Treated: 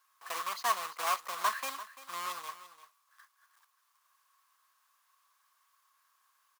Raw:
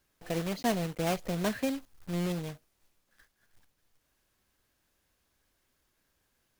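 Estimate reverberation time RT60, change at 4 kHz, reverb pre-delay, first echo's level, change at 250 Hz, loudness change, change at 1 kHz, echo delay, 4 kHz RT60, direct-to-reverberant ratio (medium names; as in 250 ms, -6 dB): no reverb, +1.0 dB, no reverb, -15.0 dB, -28.5 dB, -2.0 dB, +6.0 dB, 342 ms, no reverb, no reverb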